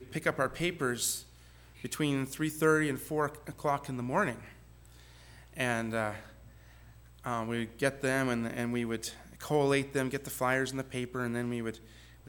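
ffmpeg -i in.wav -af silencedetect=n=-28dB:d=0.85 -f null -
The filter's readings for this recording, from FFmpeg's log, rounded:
silence_start: 4.31
silence_end: 5.60 | silence_duration: 1.29
silence_start: 6.11
silence_end: 7.26 | silence_duration: 1.16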